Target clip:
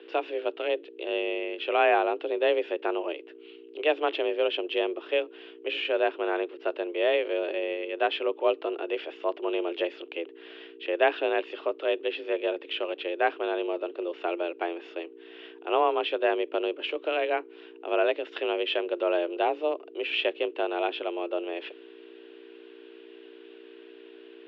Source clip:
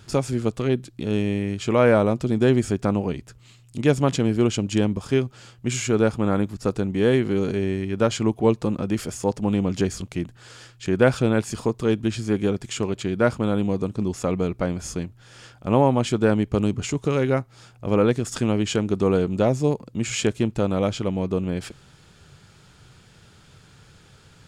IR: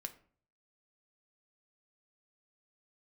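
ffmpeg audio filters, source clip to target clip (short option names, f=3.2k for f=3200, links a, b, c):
-af "aeval=exprs='val(0)+0.0251*(sin(2*PI*60*n/s)+sin(2*PI*2*60*n/s)/2+sin(2*PI*3*60*n/s)/3+sin(2*PI*4*60*n/s)/4+sin(2*PI*5*60*n/s)/5)':c=same,highpass=f=190:t=q:w=0.5412,highpass=f=190:t=q:w=1.307,lowpass=f=3.4k:t=q:w=0.5176,lowpass=f=3.4k:t=q:w=0.7071,lowpass=f=3.4k:t=q:w=1.932,afreqshift=160,equalizer=f=2.8k:t=o:w=0.62:g=11,volume=-5.5dB"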